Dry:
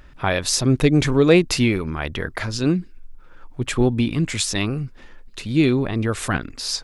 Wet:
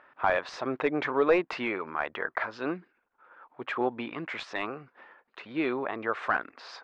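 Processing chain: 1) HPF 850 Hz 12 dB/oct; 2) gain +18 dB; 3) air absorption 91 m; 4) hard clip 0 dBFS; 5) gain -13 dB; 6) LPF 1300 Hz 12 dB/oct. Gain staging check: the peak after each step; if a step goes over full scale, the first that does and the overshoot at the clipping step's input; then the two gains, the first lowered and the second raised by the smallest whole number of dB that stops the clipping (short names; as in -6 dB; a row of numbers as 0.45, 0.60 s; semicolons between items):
-6.5, +11.5, +10.0, 0.0, -13.0, -12.5 dBFS; step 2, 10.0 dB; step 2 +8 dB, step 5 -3 dB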